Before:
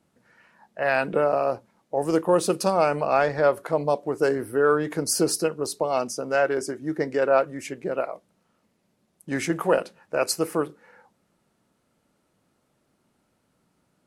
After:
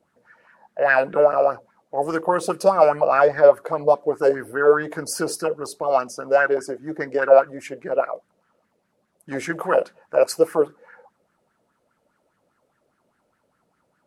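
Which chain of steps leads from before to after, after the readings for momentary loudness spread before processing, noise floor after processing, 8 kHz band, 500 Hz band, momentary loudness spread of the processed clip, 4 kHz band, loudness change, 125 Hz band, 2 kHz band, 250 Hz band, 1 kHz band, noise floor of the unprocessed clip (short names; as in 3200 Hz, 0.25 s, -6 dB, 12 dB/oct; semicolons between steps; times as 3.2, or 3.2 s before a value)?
9 LU, -70 dBFS, -4.0 dB, +5.0 dB, 14 LU, -3.5 dB, +4.5 dB, -3.5 dB, +4.5 dB, -2.5 dB, +4.5 dB, -71 dBFS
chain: LFO bell 4.9 Hz 470–1700 Hz +16 dB; gain -4 dB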